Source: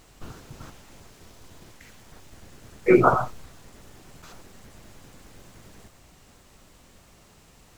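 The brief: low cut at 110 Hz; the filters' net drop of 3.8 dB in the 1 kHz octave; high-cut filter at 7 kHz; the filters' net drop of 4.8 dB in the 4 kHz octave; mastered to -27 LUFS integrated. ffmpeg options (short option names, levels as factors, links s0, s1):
-af "highpass=110,lowpass=7000,equalizer=f=1000:t=o:g=-5,equalizer=f=4000:t=o:g=-5.5,volume=0.562"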